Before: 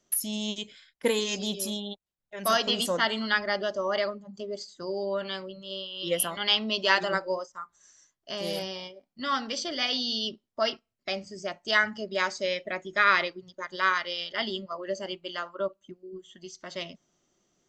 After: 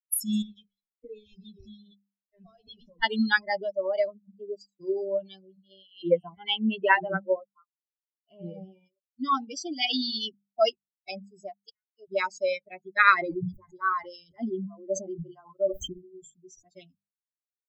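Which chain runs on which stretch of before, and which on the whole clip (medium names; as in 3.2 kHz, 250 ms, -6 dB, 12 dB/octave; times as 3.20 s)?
0.42–3.03 s: CVSD coder 32 kbps + compression 10:1, threshold -35 dBFS + doubling 18 ms -9 dB
6.02–8.86 s: low-pass 2.4 kHz + tape noise reduction on one side only encoder only
11.49–12.08 s: frequency weighting A + inverted gate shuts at -20 dBFS, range -30 dB
13.14–16.64 s: peaking EQ 3.2 kHz -10.5 dB 1.8 oct + decay stretcher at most 36 dB/s
whole clip: expander on every frequency bin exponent 3; tilt EQ -1.5 dB/octave; hum notches 50/100/150/200 Hz; trim +8 dB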